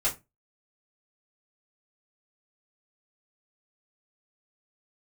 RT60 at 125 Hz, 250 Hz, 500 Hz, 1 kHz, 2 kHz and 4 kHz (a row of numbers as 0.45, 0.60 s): 0.35, 0.30, 0.25, 0.20, 0.20, 0.15 s